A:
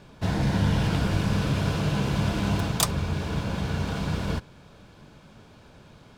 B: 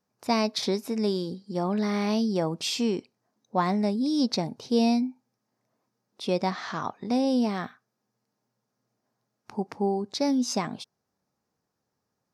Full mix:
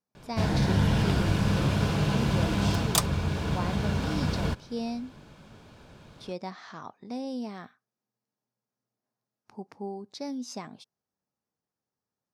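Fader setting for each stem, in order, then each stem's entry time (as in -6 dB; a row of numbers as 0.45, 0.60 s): -0.5, -10.5 dB; 0.15, 0.00 s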